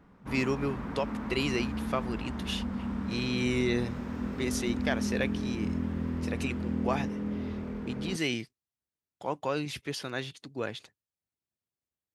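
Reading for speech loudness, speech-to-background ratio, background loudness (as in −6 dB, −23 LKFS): −34.0 LKFS, 1.0 dB, −35.0 LKFS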